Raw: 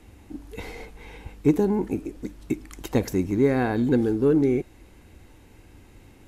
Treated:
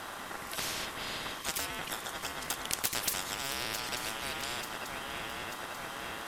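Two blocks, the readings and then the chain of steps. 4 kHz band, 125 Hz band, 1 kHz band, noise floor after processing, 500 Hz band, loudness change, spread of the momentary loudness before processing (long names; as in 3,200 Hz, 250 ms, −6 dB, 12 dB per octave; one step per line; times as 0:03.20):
+12.5 dB, −20.0 dB, −1.0 dB, −43 dBFS, −19.0 dB, −11.5 dB, 21 LU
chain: feedback echo with a long and a short gap by turns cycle 889 ms, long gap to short 3 to 1, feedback 55%, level −18 dB
ring modulation 1,100 Hz
every bin compressed towards the loudest bin 10 to 1
level +3.5 dB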